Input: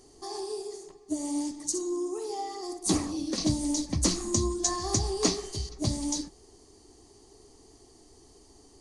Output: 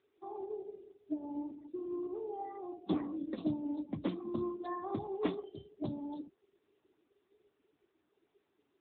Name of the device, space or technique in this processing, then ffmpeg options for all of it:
mobile call with aggressive noise cancelling: -af "highpass=180,afftdn=nr=20:nf=-41,volume=0.562" -ar 8000 -c:a libopencore_amrnb -b:a 10200

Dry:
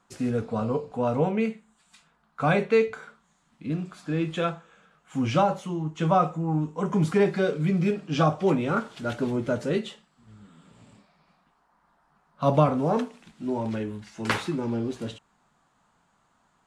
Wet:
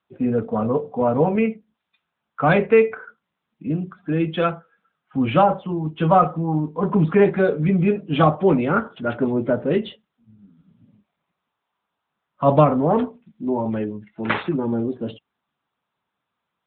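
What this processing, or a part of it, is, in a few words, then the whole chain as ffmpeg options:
mobile call with aggressive noise cancelling: -af "highpass=f=140:p=1,afftdn=nr=20:nf=-44,volume=2.24" -ar 8000 -c:a libopencore_amrnb -b:a 10200

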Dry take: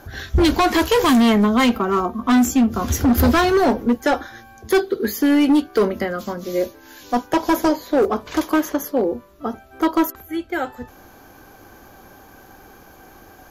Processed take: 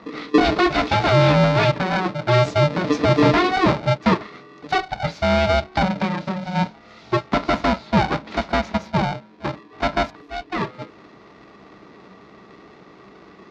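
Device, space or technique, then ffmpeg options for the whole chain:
ring modulator pedal into a guitar cabinet: -af "aeval=exprs='val(0)*sgn(sin(2*PI*370*n/s))':c=same,highpass=81,equalizer=f=92:t=q:w=4:g=-9,equalizer=f=200:t=q:w=4:g=10,equalizer=f=320:t=q:w=4:g=5,equalizer=f=740:t=q:w=4:g=-4,equalizer=f=1600:t=q:w=4:g=-5,equalizer=f=3000:t=q:w=4:g=-6,lowpass=f=4300:w=0.5412,lowpass=f=4300:w=1.3066"

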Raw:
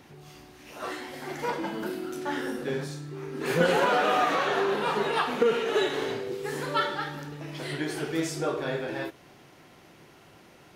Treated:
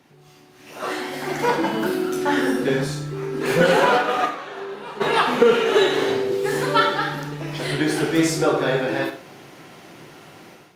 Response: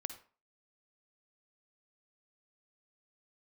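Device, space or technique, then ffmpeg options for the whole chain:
far-field microphone of a smart speaker: -filter_complex "[0:a]asplit=3[s0][s1][s2];[s0]afade=t=out:st=3.97:d=0.02[s3];[s1]agate=range=0.178:threshold=0.0794:ratio=16:detection=peak,afade=t=in:st=3.97:d=0.02,afade=t=out:st=5:d=0.02[s4];[s2]afade=t=in:st=5:d=0.02[s5];[s3][s4][s5]amix=inputs=3:normalize=0[s6];[1:a]atrim=start_sample=2205[s7];[s6][s7]afir=irnorm=-1:irlink=0,highpass=f=110:w=0.5412,highpass=f=110:w=1.3066,dynaudnorm=f=500:g=3:m=4.73,volume=0.841" -ar 48000 -c:a libopus -b:a 48k

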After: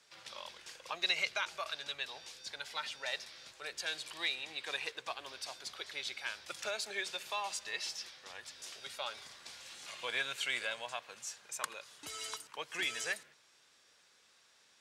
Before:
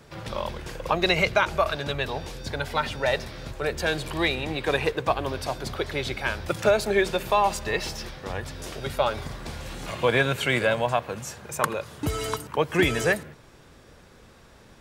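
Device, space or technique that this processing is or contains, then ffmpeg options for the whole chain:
piezo pickup straight into a mixer: -af "lowpass=6000,aderivative"

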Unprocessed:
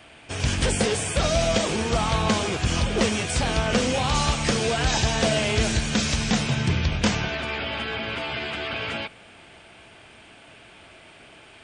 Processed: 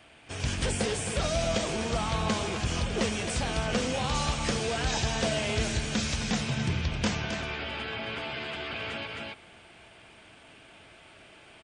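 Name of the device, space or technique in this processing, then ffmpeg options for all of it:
ducked delay: -filter_complex "[0:a]asplit=3[s0][s1][s2];[s1]adelay=265,volume=0.794[s3];[s2]apad=whole_len=524576[s4];[s3][s4]sidechaincompress=threshold=0.02:ratio=3:attack=16:release=127[s5];[s0][s5]amix=inputs=2:normalize=0,volume=0.473"

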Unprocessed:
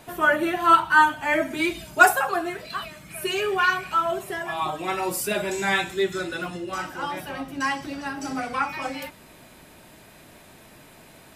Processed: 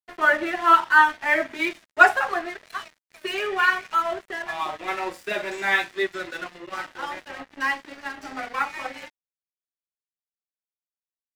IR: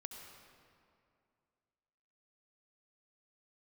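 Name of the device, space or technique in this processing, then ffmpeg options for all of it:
pocket radio on a weak battery: -af "highpass=320,lowpass=4400,aeval=exprs='sgn(val(0))*max(abs(val(0))-0.0119,0)':c=same,equalizer=f=1900:t=o:w=0.44:g=6.5"

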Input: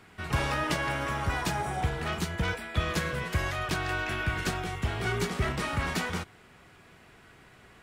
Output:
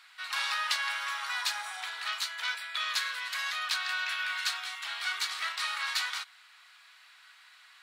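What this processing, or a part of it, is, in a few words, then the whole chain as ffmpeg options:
headphones lying on a table: -af "highpass=f=1100:w=0.5412,highpass=f=1100:w=1.3066,equalizer=f=4100:t=o:w=0.56:g=10.5"

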